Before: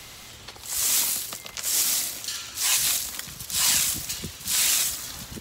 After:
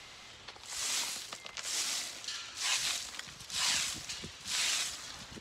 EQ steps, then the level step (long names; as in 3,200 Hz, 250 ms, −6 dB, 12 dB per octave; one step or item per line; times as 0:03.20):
high-frequency loss of the air 89 metres
low-shelf EQ 350 Hz −9 dB
−4.0 dB